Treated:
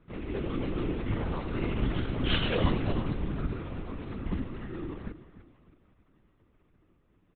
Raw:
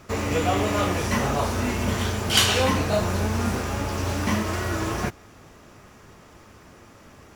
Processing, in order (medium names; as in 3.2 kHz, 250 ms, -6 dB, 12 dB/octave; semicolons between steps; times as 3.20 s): Doppler pass-by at 2.19 s, 12 m/s, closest 10 m; high-pass 160 Hz; resonant low shelf 400 Hz +9.5 dB, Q 1.5; comb 5.9 ms; feedback delay 310 ms, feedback 35%, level -14 dB; LPC vocoder at 8 kHz whisper; trim -9 dB